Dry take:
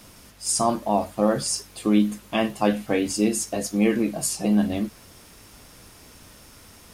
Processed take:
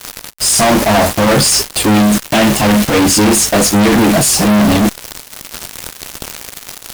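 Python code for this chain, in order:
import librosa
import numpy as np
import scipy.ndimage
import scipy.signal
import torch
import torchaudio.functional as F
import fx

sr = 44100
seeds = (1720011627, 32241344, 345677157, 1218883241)

y = fx.fuzz(x, sr, gain_db=47.0, gate_db=-43.0)
y = fx.cheby_harmonics(y, sr, harmonics=(3, 6, 7, 8), levels_db=(-19, -21, -11, -22), full_scale_db=-10.0)
y = y * librosa.db_to_amplitude(3.5)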